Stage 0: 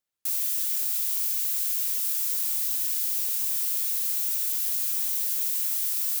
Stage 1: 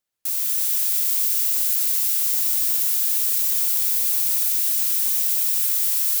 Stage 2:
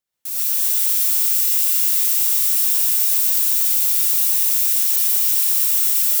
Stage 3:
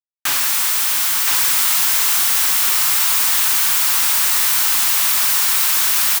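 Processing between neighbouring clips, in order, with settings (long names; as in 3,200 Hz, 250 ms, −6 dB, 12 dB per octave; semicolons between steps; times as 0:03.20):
echo machine with several playback heads 119 ms, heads first and second, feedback 74%, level −7 dB; level +3 dB
reverb whose tail is shaped and stops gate 160 ms rising, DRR −6.5 dB; level −3.5 dB
comparator with hysteresis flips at −30.5 dBFS; low shelf with overshoot 740 Hz −9.5 dB, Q 1.5; single-tap delay 1,021 ms −3 dB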